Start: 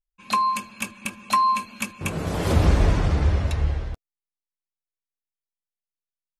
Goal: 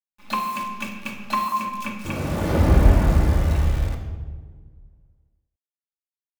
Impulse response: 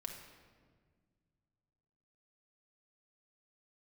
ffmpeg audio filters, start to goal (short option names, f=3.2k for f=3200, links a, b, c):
-filter_complex "[0:a]lowpass=5.7k,aemphasis=mode=reproduction:type=50fm,acrusher=bits=7:dc=4:mix=0:aa=0.000001,asettb=1/sr,asplit=3[a][b][c];[a]atrim=end=1.484[d];[b]atrim=start=1.48:end=3.65,asetpts=PTS-STARTPTS,afade=t=in:d=0.004:c=qsin,afade=t=out:st=2.166:d=0.004:c=qsin,acrossover=split=3400[e][f];[e]adelay=40[g];[g][f]amix=inputs=2:normalize=0,atrim=end_sample=95697[h];[c]atrim=start=3.646[i];[d][h]acrossfade=d=0.004:c1=hsin:c2=qsin[j];[j][i]acrossfade=d=0.004:c1=qsin:c2=hsin[k];[1:a]atrim=start_sample=2205,asetrate=57330,aresample=44100[l];[k][l]afir=irnorm=-1:irlink=0,volume=6.5dB"